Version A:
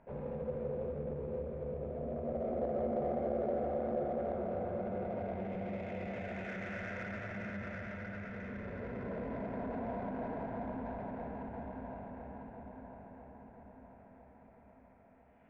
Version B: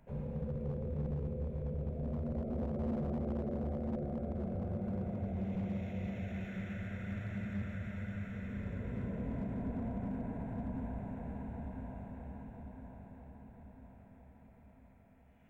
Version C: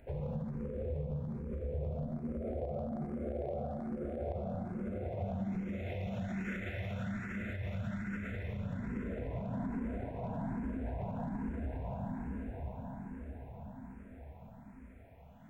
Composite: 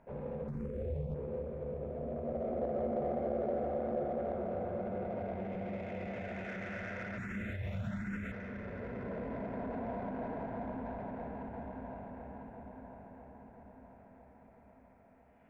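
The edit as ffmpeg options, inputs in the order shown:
-filter_complex "[2:a]asplit=2[s0][s1];[0:a]asplit=3[s2][s3][s4];[s2]atrim=end=0.482[s5];[s0]atrim=start=0.478:end=1.142[s6];[s3]atrim=start=1.138:end=7.182[s7];[s1]atrim=start=7.178:end=8.322[s8];[s4]atrim=start=8.318[s9];[s5][s6]acrossfade=d=0.004:c1=hsin:c2=hsin[s10];[s10][s7]acrossfade=d=0.004:c1=hsin:c2=hsin[s11];[s11][s8]acrossfade=d=0.004:c1=hsin:c2=hsin[s12];[s12][s9]acrossfade=d=0.004:c1=hsin:c2=hsin"

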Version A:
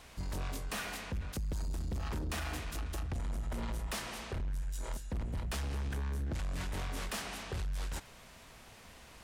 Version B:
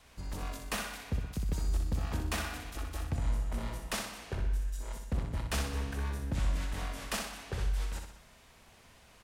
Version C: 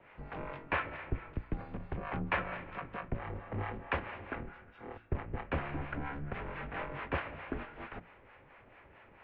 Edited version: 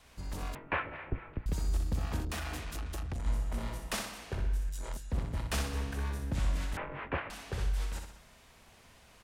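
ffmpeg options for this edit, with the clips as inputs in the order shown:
-filter_complex "[2:a]asplit=2[s0][s1];[0:a]asplit=2[s2][s3];[1:a]asplit=5[s4][s5][s6][s7][s8];[s4]atrim=end=0.552[s9];[s0]atrim=start=0.548:end=1.462[s10];[s5]atrim=start=1.458:end=2.252[s11];[s2]atrim=start=2.248:end=3.262[s12];[s6]atrim=start=3.258:end=4.692[s13];[s3]atrim=start=4.688:end=5.132[s14];[s7]atrim=start=5.128:end=6.772[s15];[s1]atrim=start=6.768:end=7.302[s16];[s8]atrim=start=7.298[s17];[s9][s10]acrossfade=d=0.004:c1=hsin:c2=hsin[s18];[s18][s11]acrossfade=d=0.004:c1=hsin:c2=hsin[s19];[s19][s12]acrossfade=d=0.004:c1=hsin:c2=hsin[s20];[s20][s13]acrossfade=d=0.004:c1=hsin:c2=hsin[s21];[s21][s14]acrossfade=d=0.004:c1=hsin:c2=hsin[s22];[s22][s15]acrossfade=d=0.004:c1=hsin:c2=hsin[s23];[s23][s16]acrossfade=d=0.004:c1=hsin:c2=hsin[s24];[s24][s17]acrossfade=d=0.004:c1=hsin:c2=hsin"

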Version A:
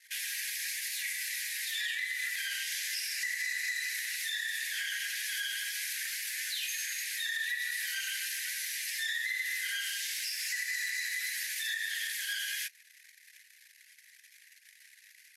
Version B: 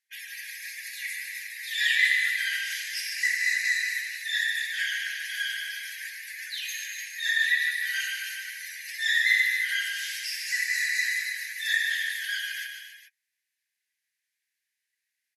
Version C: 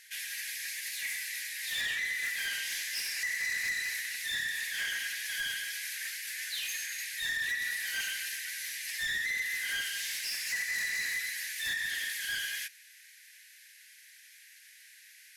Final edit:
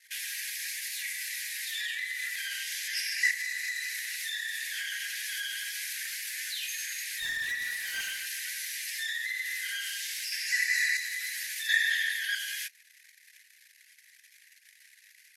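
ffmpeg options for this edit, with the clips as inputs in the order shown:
-filter_complex "[1:a]asplit=3[s0][s1][s2];[0:a]asplit=5[s3][s4][s5][s6][s7];[s3]atrim=end=2.882[s8];[s0]atrim=start=2.878:end=3.312[s9];[s4]atrim=start=3.308:end=7.202[s10];[2:a]atrim=start=7.198:end=8.272[s11];[s5]atrim=start=8.268:end=10.322[s12];[s1]atrim=start=10.318:end=10.972[s13];[s6]atrim=start=10.968:end=11.692[s14];[s2]atrim=start=11.688:end=12.352[s15];[s7]atrim=start=12.348[s16];[s8][s9]acrossfade=d=0.004:c1=hsin:c2=hsin[s17];[s17][s10]acrossfade=d=0.004:c1=hsin:c2=hsin[s18];[s18][s11]acrossfade=d=0.004:c1=hsin:c2=hsin[s19];[s19][s12]acrossfade=d=0.004:c1=hsin:c2=hsin[s20];[s20][s13]acrossfade=d=0.004:c1=hsin:c2=hsin[s21];[s21][s14]acrossfade=d=0.004:c1=hsin:c2=hsin[s22];[s22][s15]acrossfade=d=0.004:c1=hsin:c2=hsin[s23];[s23][s16]acrossfade=d=0.004:c1=hsin:c2=hsin"

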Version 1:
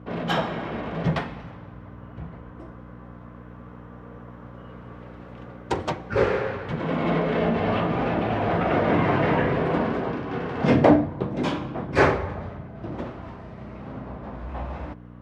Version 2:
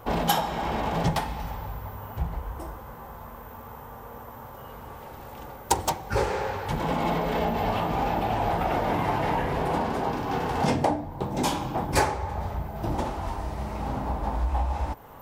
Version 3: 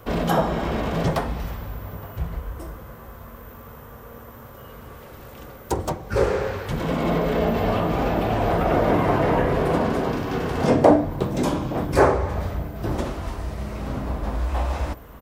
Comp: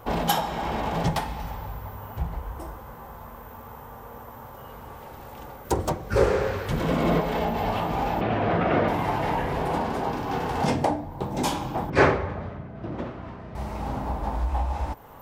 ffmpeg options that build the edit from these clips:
-filter_complex "[0:a]asplit=2[s0][s1];[1:a]asplit=4[s2][s3][s4][s5];[s2]atrim=end=5.652[s6];[2:a]atrim=start=5.648:end=7.212[s7];[s3]atrim=start=7.208:end=8.212[s8];[s0]atrim=start=8.208:end=8.882[s9];[s4]atrim=start=8.878:end=11.902[s10];[s1]atrim=start=11.898:end=13.552[s11];[s5]atrim=start=13.548[s12];[s6][s7]acrossfade=d=0.004:c1=hsin:c2=hsin[s13];[s13][s8]acrossfade=d=0.004:c1=hsin:c2=hsin[s14];[s14][s9]acrossfade=d=0.004:c1=hsin:c2=hsin[s15];[s15][s10]acrossfade=d=0.004:c1=hsin:c2=hsin[s16];[s16][s11]acrossfade=d=0.004:c1=hsin:c2=hsin[s17];[s17][s12]acrossfade=d=0.004:c1=hsin:c2=hsin"

